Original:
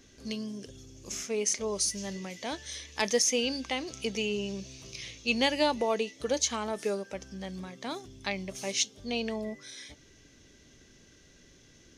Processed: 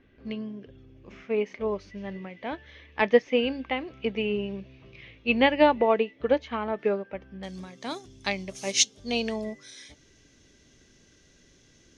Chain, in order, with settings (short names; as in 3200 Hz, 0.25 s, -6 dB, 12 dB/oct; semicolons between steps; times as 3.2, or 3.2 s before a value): LPF 2600 Hz 24 dB/oct, from 7.43 s 11000 Hz; upward expander 1.5:1, over -42 dBFS; gain +9 dB